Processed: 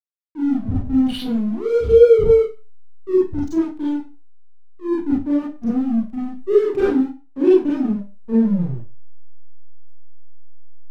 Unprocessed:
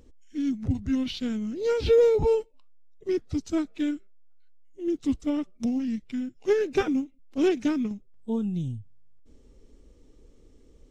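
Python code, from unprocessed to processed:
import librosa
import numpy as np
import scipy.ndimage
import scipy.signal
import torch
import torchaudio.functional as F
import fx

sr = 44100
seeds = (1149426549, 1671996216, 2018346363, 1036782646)

y = fx.envelope_sharpen(x, sr, power=2.0)
y = fx.backlash(y, sr, play_db=-32.0)
y = fx.rev_schroeder(y, sr, rt60_s=0.3, comb_ms=31, drr_db=-7.5)
y = y * librosa.db_to_amplitude(1.0)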